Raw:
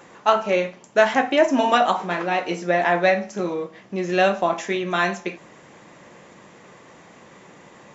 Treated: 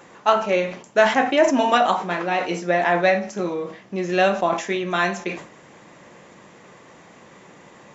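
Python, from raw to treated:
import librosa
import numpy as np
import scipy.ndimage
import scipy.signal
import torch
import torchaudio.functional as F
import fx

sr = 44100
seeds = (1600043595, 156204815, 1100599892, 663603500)

y = fx.sustainer(x, sr, db_per_s=110.0)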